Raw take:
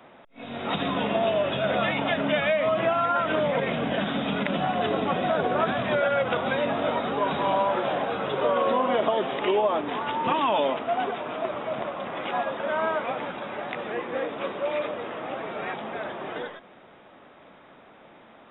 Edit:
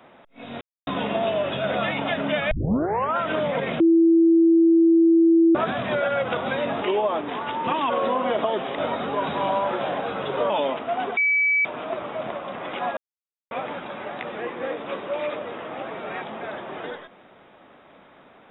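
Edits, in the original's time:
0:00.61–0:00.87: silence
0:02.51: tape start 0.66 s
0:03.80–0:05.55: beep over 331 Hz −12.5 dBFS
0:06.82–0:08.54: swap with 0:09.42–0:10.50
0:11.17: insert tone 2,290 Hz −17 dBFS 0.48 s
0:12.49–0:13.03: silence

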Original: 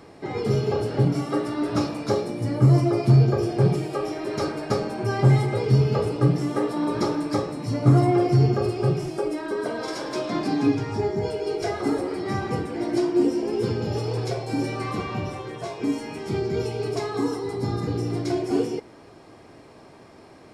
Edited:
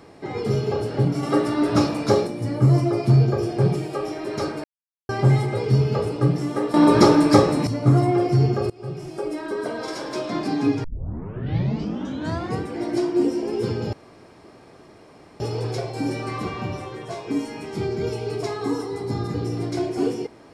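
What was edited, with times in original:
0:01.23–0:02.27: clip gain +5 dB
0:04.64–0:05.09: silence
0:06.74–0:07.67: clip gain +10.5 dB
0:08.70–0:09.38: fade in, from −22.5 dB
0:10.84: tape start 1.77 s
0:13.93: splice in room tone 1.47 s

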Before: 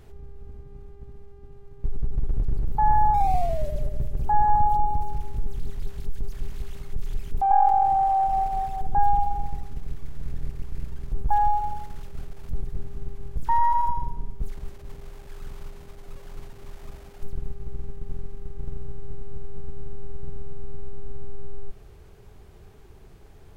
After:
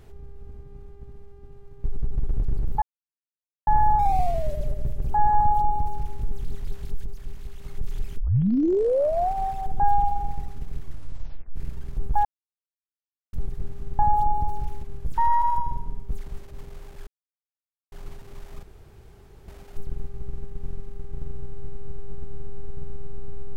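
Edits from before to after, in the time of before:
0:02.82: splice in silence 0.85 s
0:04.52–0:05.36: duplicate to 0:13.14
0:06.20–0:06.79: clip gain −4.5 dB
0:07.33: tape start 1.14 s
0:09.98: tape stop 0.73 s
0:11.40–0:12.48: silence
0:15.38–0:16.23: silence
0:16.94: splice in room tone 0.85 s

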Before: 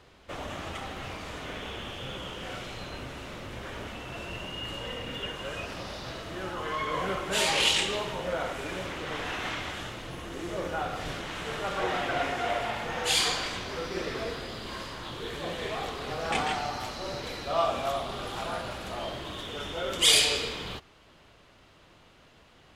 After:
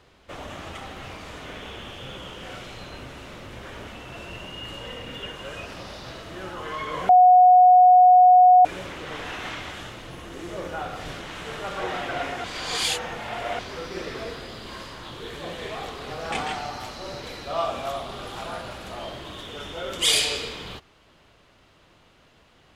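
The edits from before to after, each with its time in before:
0:07.09–0:08.65: beep over 730 Hz −9.5 dBFS
0:12.44–0:13.59: reverse

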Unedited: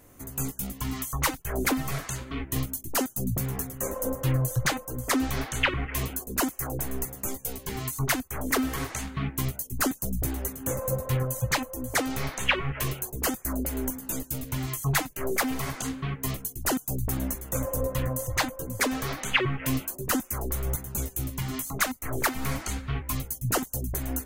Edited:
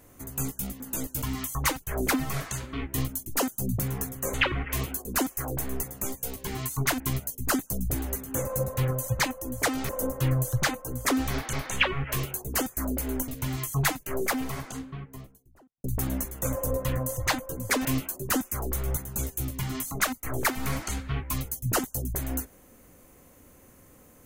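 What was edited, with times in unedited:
0:03.92–0:05.56: move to 0:12.21
0:08.22–0:09.32: remove
0:13.96–0:14.38: move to 0:00.80
0:15.09–0:16.94: fade out and dull
0:18.95–0:19.64: remove

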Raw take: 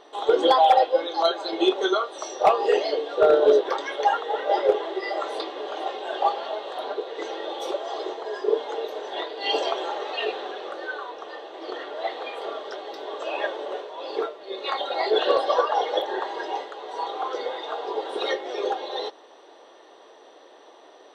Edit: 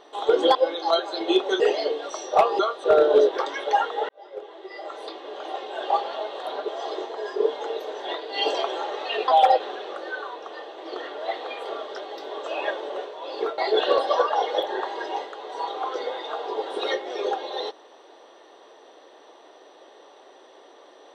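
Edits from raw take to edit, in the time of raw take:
0:00.55–0:00.87: move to 0:10.36
0:01.92–0:02.17: swap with 0:02.67–0:03.16
0:04.41–0:06.35: fade in
0:07.00–0:07.76: remove
0:14.34–0:14.97: remove

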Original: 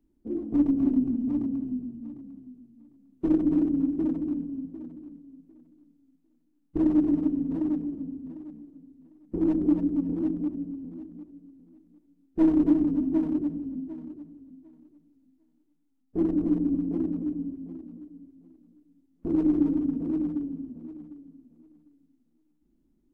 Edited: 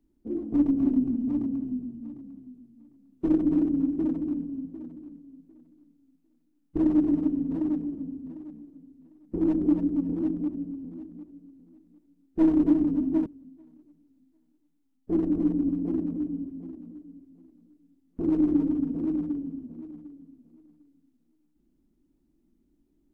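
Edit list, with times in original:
0:13.26–0:14.32: remove

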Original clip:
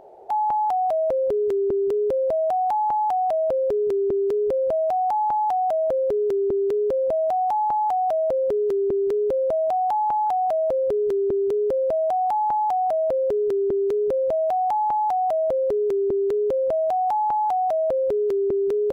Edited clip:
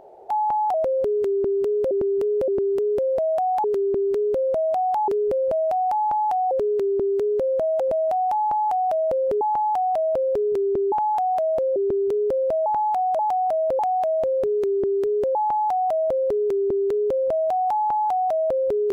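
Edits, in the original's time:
0:00.74–0:01.00: remove
0:01.60–0:02.17: repeat, 3 plays
0:02.76–0:04.27: swap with 0:08.60–0:10.04
0:05.70–0:06.99: reverse
0:10.88–0:11.16: remove
0:12.06–0:12.59: reverse
0:13.19–0:14.75: reverse

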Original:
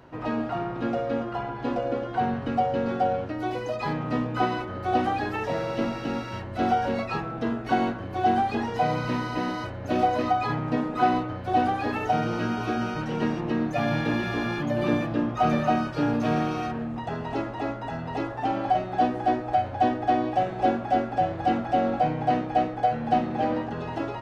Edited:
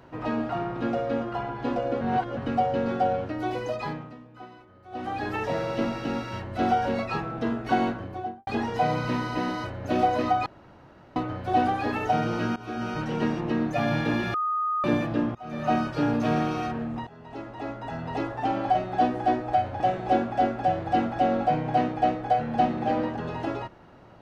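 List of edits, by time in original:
0:02.01–0:02.37: reverse
0:03.71–0:05.34: duck −20 dB, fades 0.44 s
0:07.91–0:08.47: fade out and dull
0:10.46–0:11.16: fill with room tone
0:12.56–0:12.96: fade in, from −17.5 dB
0:14.34–0:14.84: beep over 1,240 Hz −23.5 dBFS
0:15.35–0:15.73: fade in quadratic, from −23 dB
0:17.07–0:18.11: fade in, from −21.5 dB
0:19.80–0:20.33: remove

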